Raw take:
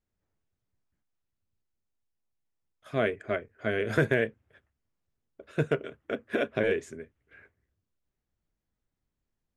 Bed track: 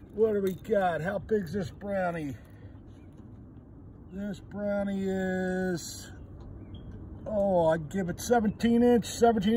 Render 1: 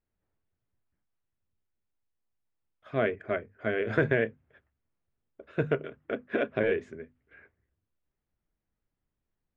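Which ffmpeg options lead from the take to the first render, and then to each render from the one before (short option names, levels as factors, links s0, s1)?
-af "lowpass=2800,bandreject=f=50:t=h:w=6,bandreject=f=100:t=h:w=6,bandreject=f=150:t=h:w=6,bandreject=f=200:t=h:w=6,bandreject=f=250:t=h:w=6"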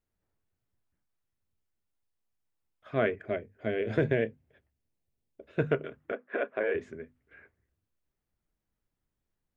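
-filter_complex "[0:a]asettb=1/sr,asplit=3[s0][s1][s2];[s0]atrim=end=3.254[s3];[s1]atrim=start=3.25:end=5.59,asetpts=PTS-STARTPTS,afade=t=in:d=0.004:c=qsin,afade=t=out:st=2.336:d=0.004:c=qsin,equalizer=f=1300:w=1.4:g=-10[s4];[s2]atrim=start=5.586[s5];[s3][s4]acrossfade=d=0.004:c1=hsin:c2=qsin[s6];[s6][s5]acrossfade=d=0.004:c1=qsin:c2=hsin,asettb=1/sr,asplit=3[s7][s8][s9];[s7]atrim=end=6.124[s10];[s8]atrim=start=6.12:end=6.75,asetpts=PTS-STARTPTS,afade=t=in:d=0.004:c=qsin,afade=t=out:st=0.626:d=0.004:c=qsin,highpass=460,lowpass=2100[s11];[s9]atrim=start=6.746[s12];[s10][s11]acrossfade=d=0.004:c1=hsin:c2=qsin[s13];[s13][s12]acrossfade=d=0.004:c1=qsin:c2=hsin"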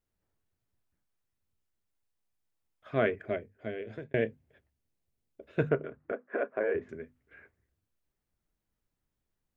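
-filter_complex "[0:a]asettb=1/sr,asplit=3[s0][s1][s2];[s0]atrim=end=5.694[s3];[s1]atrim=start=5.69:end=6.89,asetpts=PTS-STARTPTS,afade=t=in:d=0.004:c=qsin,afade=t=out:st=1.196:d=0.004:c=qsin,lowpass=1700[s4];[s2]atrim=start=6.886[s5];[s3][s4]acrossfade=d=0.004:c1=hsin:c2=qsin[s6];[s6][s5]acrossfade=d=0.004:c1=qsin:c2=hsin,asplit=2[s7][s8];[s7]atrim=end=4.14,asetpts=PTS-STARTPTS,afade=t=out:st=3.26:d=0.88[s9];[s8]atrim=start=4.14,asetpts=PTS-STARTPTS,afade=t=in:d=0.004:c=hsin[s10];[s9][s10]concat=n=2:v=0:a=1"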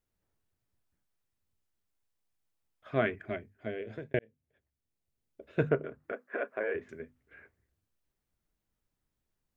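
-filter_complex "[0:a]asettb=1/sr,asplit=3[s0][s1][s2];[s0]atrim=end=3.014[s3];[s1]atrim=start=3.01:end=3.66,asetpts=PTS-STARTPTS,afade=t=in:d=0.004:c=qsin,afade=t=out:st=0.646:d=0.004:c=qsin,equalizer=f=500:t=o:w=0.42:g=-13.5[s4];[s2]atrim=start=3.656[s5];[s3][s4]acrossfade=d=0.004:c1=hsin:c2=qsin[s6];[s6][s5]acrossfade=d=0.004:c1=qsin:c2=hsin,asettb=1/sr,asplit=3[s7][s8][s9];[s7]atrim=end=6.044[s10];[s8]atrim=start=6.04:end=7,asetpts=PTS-STARTPTS,afade=t=in:d=0.004:c=qsin,afade=t=out:st=0.956:d=0.004:c=qsin,tiltshelf=f=1400:g=-5[s11];[s9]atrim=start=6.996[s12];[s10][s11]acrossfade=d=0.004:c1=hsin:c2=qsin[s13];[s13][s12]acrossfade=d=0.004:c1=qsin:c2=hsin,asplit=2[s14][s15];[s14]atrim=end=4.19,asetpts=PTS-STARTPTS,afade=t=out:st=4.186:d=0.004:c=hsin[s16];[s15]atrim=start=4.19,asetpts=PTS-STARTPTS,afade=t=in:d=1.29[s17];[s16][s17]concat=n=2:v=0:a=1"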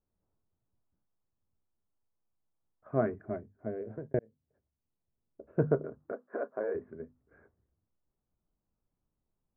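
-af "lowpass=f=1200:w=0.5412,lowpass=f=1200:w=1.3066,equalizer=f=190:w=1.5:g=2.5"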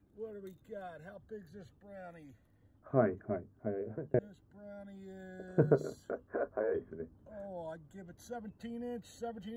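-filter_complex "[1:a]volume=0.106[s0];[0:a][s0]amix=inputs=2:normalize=0"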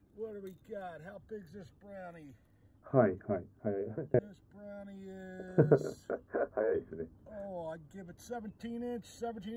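-af "volume=1.26"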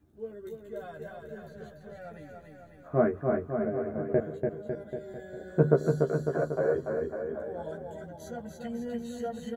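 -filter_complex "[0:a]asplit=2[s0][s1];[s1]adelay=13,volume=0.794[s2];[s0][s2]amix=inputs=2:normalize=0,aecho=1:1:290|551|785.9|997.3|1188:0.631|0.398|0.251|0.158|0.1"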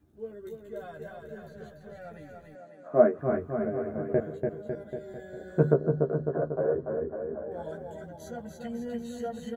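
-filter_complex "[0:a]asettb=1/sr,asplit=3[s0][s1][s2];[s0]atrim=end=2.554[s3];[s1]atrim=start=2.55:end=3.19,asetpts=PTS-STARTPTS,afade=t=in:d=0.004:c=qsin,afade=t=out:st=0.636:d=0.004:c=qsin,highpass=f=170:w=0.5412,highpass=f=170:w=1.3066,equalizer=f=600:t=q:w=4:g=8,equalizer=f=2300:t=q:w=4:g=-3,equalizer=f=3400:t=q:w=4:g=-4,lowpass=f=9800:w=0.5412,lowpass=f=9800:w=1.3066[s4];[s2]atrim=start=3.186[s5];[s3][s4]acrossfade=d=0.004:c1=hsin:c2=qsin[s6];[s6][s5]acrossfade=d=0.004:c1=qsin:c2=hsin,asplit=3[s7][s8][s9];[s7]afade=t=out:st=5.73:d=0.02[s10];[s8]lowpass=1100,afade=t=in:st=5.73:d=0.02,afade=t=out:st=7.5:d=0.02[s11];[s9]afade=t=in:st=7.5:d=0.02[s12];[s10][s11][s12]amix=inputs=3:normalize=0"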